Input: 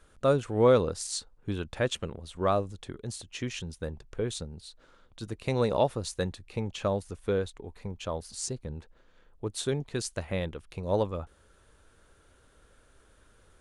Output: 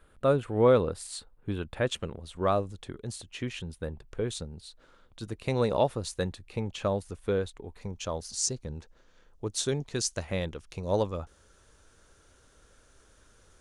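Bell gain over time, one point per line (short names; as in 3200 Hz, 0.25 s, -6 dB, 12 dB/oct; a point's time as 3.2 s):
bell 6000 Hz 0.76 oct
-12 dB
from 1.87 s -2 dB
from 3.35 s -8.5 dB
from 4.08 s -1 dB
from 7.81 s +9 dB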